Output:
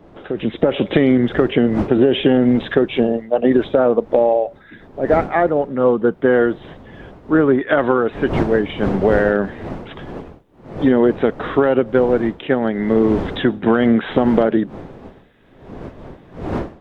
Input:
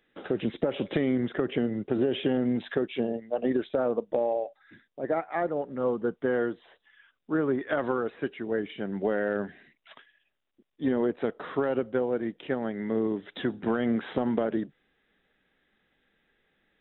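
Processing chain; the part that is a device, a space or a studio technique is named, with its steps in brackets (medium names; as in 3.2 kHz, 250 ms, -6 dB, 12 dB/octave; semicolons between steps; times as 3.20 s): smartphone video outdoors (wind noise 440 Hz -43 dBFS; level rider gain up to 10 dB; trim +3 dB; AAC 128 kbps 48 kHz)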